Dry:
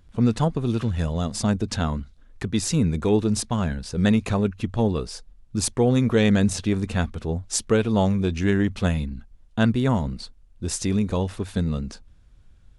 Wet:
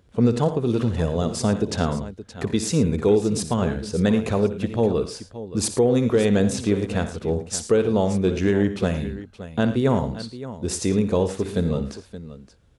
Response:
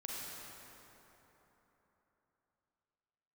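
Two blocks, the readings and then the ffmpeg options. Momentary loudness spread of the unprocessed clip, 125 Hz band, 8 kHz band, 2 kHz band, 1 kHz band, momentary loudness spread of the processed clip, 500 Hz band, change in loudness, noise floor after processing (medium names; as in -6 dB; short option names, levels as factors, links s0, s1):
12 LU, -1.0 dB, -0.5 dB, -1.5 dB, +0.5 dB, 12 LU, +5.0 dB, +1.0 dB, -53 dBFS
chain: -af "highpass=74,equalizer=f=460:w=1.5:g=8,alimiter=limit=0.355:level=0:latency=1:release=336,aecho=1:1:59|86|111|572:0.211|0.178|0.158|0.2"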